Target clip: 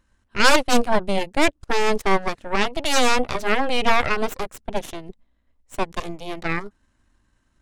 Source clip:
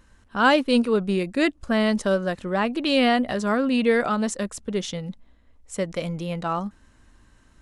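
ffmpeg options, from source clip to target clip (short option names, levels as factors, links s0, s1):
-af "aeval=exprs='0.473*(cos(1*acos(clip(val(0)/0.473,-1,1)))-cos(1*PI/2))+0.119*(cos(3*acos(clip(val(0)/0.473,-1,1)))-cos(3*PI/2))+0.168*(cos(6*acos(clip(val(0)/0.473,-1,1)))-cos(6*PI/2))+0.0168*(cos(8*acos(clip(val(0)/0.473,-1,1)))-cos(8*PI/2))':c=same,bandreject=f=460:w=12,volume=1.33"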